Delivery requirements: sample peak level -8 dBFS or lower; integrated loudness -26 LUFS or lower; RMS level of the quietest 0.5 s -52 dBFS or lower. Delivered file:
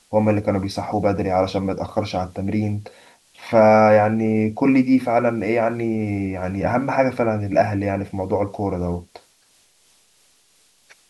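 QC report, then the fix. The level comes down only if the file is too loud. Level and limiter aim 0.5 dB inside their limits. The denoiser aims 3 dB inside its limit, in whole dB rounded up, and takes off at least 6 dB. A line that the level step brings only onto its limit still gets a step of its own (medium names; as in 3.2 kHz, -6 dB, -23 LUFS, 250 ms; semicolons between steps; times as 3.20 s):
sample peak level -3.5 dBFS: fail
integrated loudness -20.0 LUFS: fail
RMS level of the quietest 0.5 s -58 dBFS: pass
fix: trim -6.5 dB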